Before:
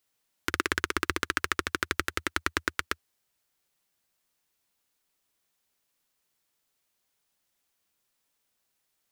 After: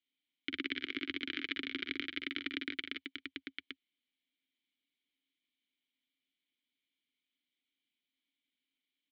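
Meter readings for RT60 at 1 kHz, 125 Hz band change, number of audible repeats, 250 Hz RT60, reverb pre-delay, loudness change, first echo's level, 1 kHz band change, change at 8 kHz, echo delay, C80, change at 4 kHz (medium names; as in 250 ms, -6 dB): no reverb, -22.0 dB, 3, no reverb, no reverb, -9.0 dB, -8.0 dB, -23.0 dB, under -30 dB, 45 ms, no reverb, -3.0 dB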